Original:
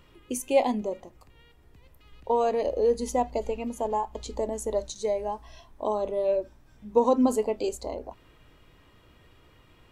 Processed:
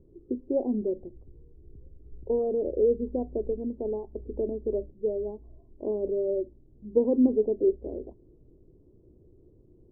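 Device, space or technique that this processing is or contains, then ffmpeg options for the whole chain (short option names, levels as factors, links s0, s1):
under water: -filter_complex "[0:a]asettb=1/sr,asplit=3[s0][s1][s2];[s0]atrim=end=0.934[s3];[s1]atrim=start=0.93:end=2.39,asetpts=PTS-STARTPTS,afade=t=in:d=0.004:c=qsin,afade=t=out:st=1.456:d=0.004:c=qsin,lowshelf=f=120:g=8.5[s4];[s2]atrim=start=2.386[s5];[s3][s4]acrossfade=d=0.004:c1=hsin:c2=qsin[s6];[s6][s5]acrossfade=d=0.004:c1=qsin:c2=hsin,lowpass=f=460:w=0.5412,lowpass=f=460:w=1.3066,equalizer=f=370:t=o:w=0.44:g=9"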